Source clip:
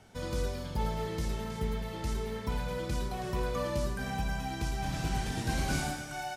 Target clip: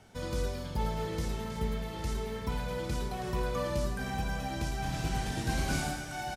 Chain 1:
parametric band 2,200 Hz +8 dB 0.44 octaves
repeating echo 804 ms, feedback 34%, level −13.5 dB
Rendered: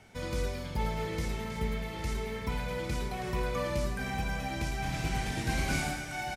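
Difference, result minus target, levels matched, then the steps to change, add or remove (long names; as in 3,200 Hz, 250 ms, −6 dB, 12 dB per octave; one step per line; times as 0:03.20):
2,000 Hz band +2.5 dB
remove: parametric band 2,200 Hz +8 dB 0.44 octaves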